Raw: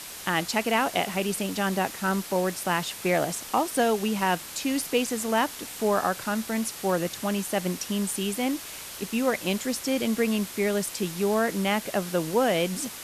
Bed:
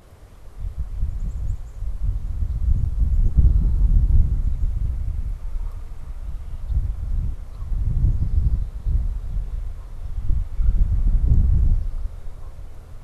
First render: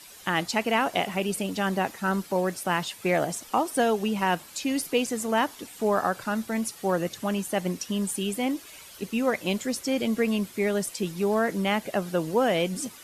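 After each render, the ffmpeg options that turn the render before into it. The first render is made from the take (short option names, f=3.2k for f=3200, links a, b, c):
-af "afftdn=nr=11:nf=-40"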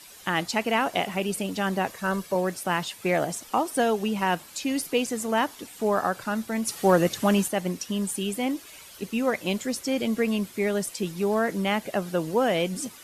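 -filter_complex "[0:a]asettb=1/sr,asplit=3[a][b][c];[a]atrim=end=1.874[d];[b]atrim=start=1.87:end=2.35,asetpts=PTS-STARTPTS,afade=t=in:d=0.004:c=qsin,afade=t=out:st=0.476:d=0.004:c=qsin,aecho=1:1:1.8:0.55,atrim=end_sample=21168[e];[c]atrim=start=2.346[f];[d][e]acrossfade=d=0.004:c1=hsin:c2=qsin[g];[g][f]acrossfade=d=0.004:c1=qsin:c2=hsin,asplit=3[h][i][j];[h]afade=t=out:st=6.67:d=0.02[k];[i]acontrast=68,afade=t=in:st=6.67:d=0.02,afade=t=out:st=7.47:d=0.02[l];[j]afade=t=in:st=7.47:d=0.02[m];[k][l][m]amix=inputs=3:normalize=0"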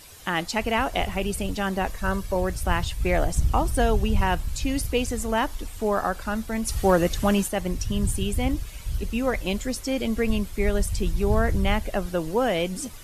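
-filter_complex "[1:a]volume=-7.5dB[a];[0:a][a]amix=inputs=2:normalize=0"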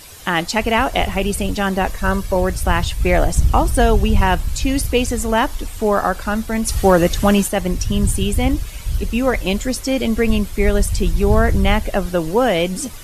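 -af "volume=7.5dB,alimiter=limit=-1dB:level=0:latency=1"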